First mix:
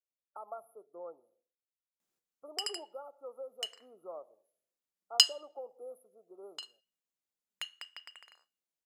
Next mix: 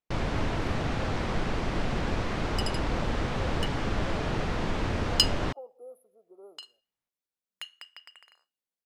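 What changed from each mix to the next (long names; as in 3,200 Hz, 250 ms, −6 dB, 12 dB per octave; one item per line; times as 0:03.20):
first sound: unmuted
master: add parametric band 7,100 Hz −4.5 dB 0.32 octaves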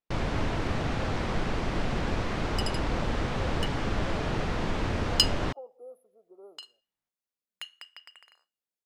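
speech: add high-shelf EQ 11,000 Hz −11.5 dB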